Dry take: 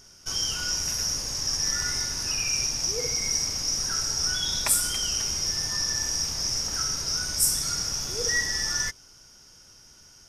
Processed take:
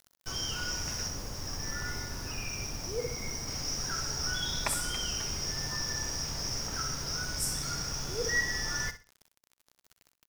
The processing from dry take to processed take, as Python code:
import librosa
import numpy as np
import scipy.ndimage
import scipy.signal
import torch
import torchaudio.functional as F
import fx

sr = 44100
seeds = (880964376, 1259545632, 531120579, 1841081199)

y = fx.lowpass(x, sr, hz=fx.steps((0.0, 2100.0), (1.08, 1100.0), (3.48, 2200.0)), slope=6)
y = fx.quant_dither(y, sr, seeds[0], bits=8, dither='none')
y = fx.echo_feedback(y, sr, ms=63, feedback_pct=24, wet_db=-12.5)